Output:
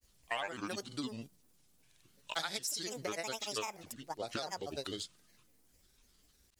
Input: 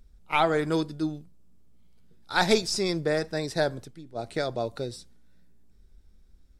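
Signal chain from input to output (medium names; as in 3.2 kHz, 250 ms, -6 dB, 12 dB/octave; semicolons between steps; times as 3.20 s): tilt EQ +3.5 dB/octave; granulator, pitch spread up and down by 7 st; compression 6:1, threshold -38 dBFS, peak gain reduction 19 dB; trim +2 dB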